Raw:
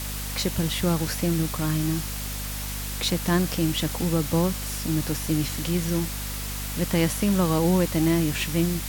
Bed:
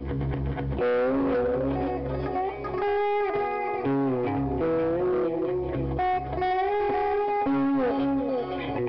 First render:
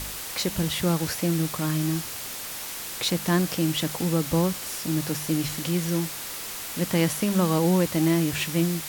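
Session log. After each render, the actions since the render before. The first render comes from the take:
hum removal 50 Hz, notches 5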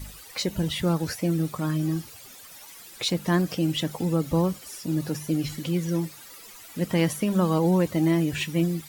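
broadband denoise 15 dB, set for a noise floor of −35 dBFS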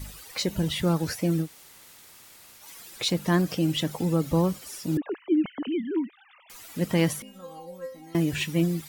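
0:01.44–0:02.62: fill with room tone, crossfade 0.10 s
0:04.97–0:06.50: three sine waves on the formant tracks
0:07.22–0:08.15: stiff-string resonator 260 Hz, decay 0.4 s, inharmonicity 0.002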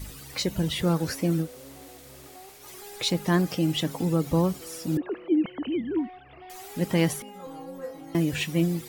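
mix in bed −20.5 dB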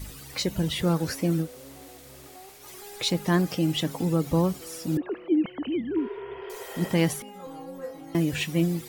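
0:06.01–0:06.87: healed spectral selection 370–3,400 Hz both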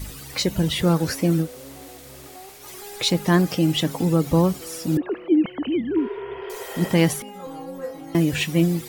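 level +5 dB

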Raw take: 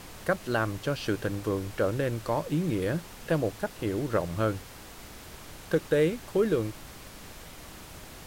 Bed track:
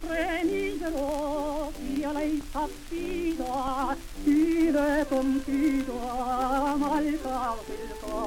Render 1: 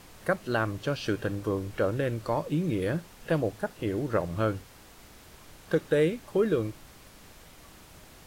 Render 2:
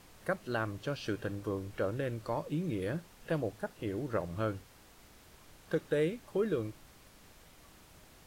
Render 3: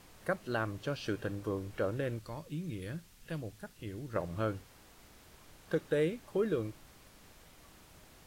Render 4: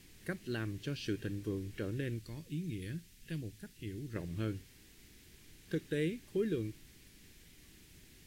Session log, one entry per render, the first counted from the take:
noise reduction from a noise print 6 dB
level −6.5 dB
0:02.19–0:04.16: parametric band 630 Hz −11.5 dB 2.8 octaves
flat-topped bell 840 Hz −15 dB

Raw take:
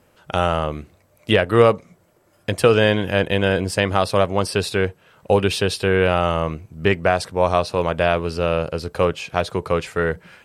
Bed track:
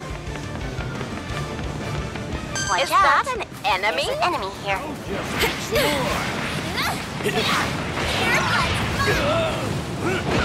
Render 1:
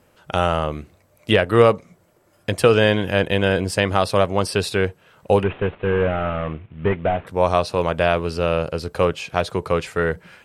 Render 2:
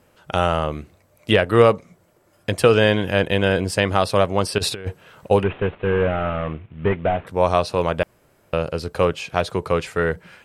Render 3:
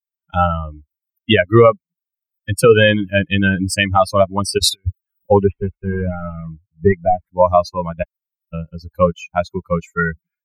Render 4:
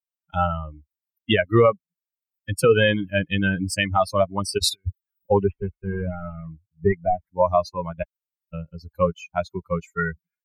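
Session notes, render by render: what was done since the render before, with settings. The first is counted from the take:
0:05.43–0:07.27: variable-slope delta modulation 16 kbit/s
0:04.58–0:05.31: compressor whose output falls as the input rises −25 dBFS, ratio −0.5; 0:08.03–0:08.53: fill with room tone
spectral dynamics exaggerated over time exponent 3; boost into a limiter +12.5 dB
level −6.5 dB

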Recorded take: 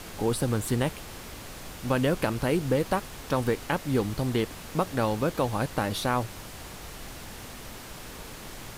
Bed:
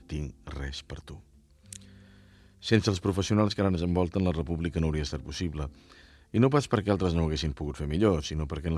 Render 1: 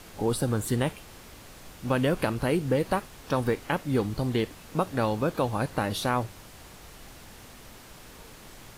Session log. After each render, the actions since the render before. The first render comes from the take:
noise reduction from a noise print 6 dB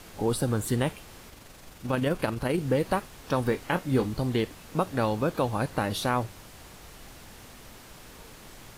0:01.29–0:02.58: amplitude modulation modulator 23 Hz, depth 25%
0:03.49–0:04.13: double-tracking delay 23 ms −9 dB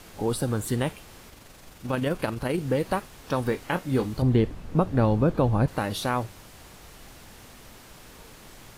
0:04.22–0:05.68: spectral tilt −3 dB per octave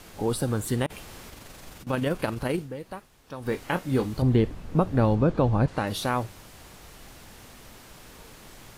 0:00.86–0:01.87: compressor whose output falls as the input rises −44 dBFS
0:02.54–0:03.54: duck −12 dB, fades 0.14 s
0:05.15–0:05.87: low-pass filter 7,400 Hz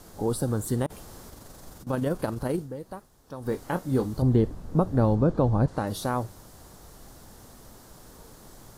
parametric band 2,500 Hz −13.5 dB 1.1 octaves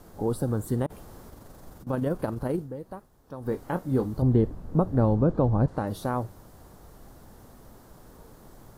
parametric band 6,400 Hz −9 dB 2.8 octaves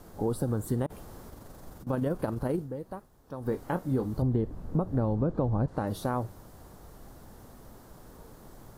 downward compressor 4 to 1, threshold −24 dBFS, peak gain reduction 7 dB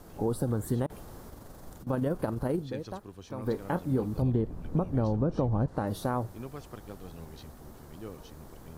mix in bed −19.5 dB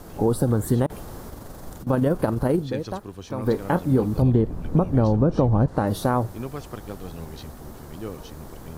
level +8.5 dB

